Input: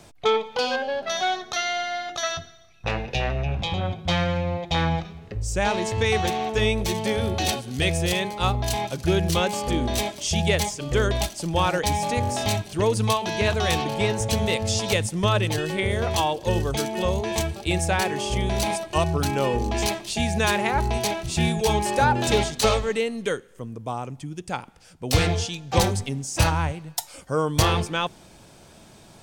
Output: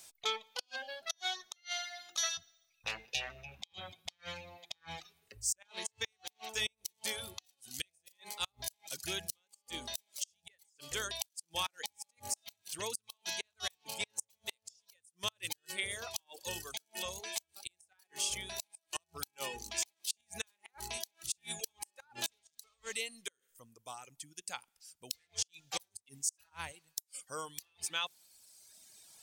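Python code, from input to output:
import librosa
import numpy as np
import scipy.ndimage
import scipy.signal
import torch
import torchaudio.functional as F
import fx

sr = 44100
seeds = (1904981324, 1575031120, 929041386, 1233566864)

y = scipy.signal.lfilter([1.0, -0.97], [1.0], x)
y = fx.gate_flip(y, sr, shuts_db=-23.0, range_db=-32)
y = fx.dereverb_blind(y, sr, rt60_s=1.7)
y = F.gain(torch.from_numpy(y), 2.0).numpy()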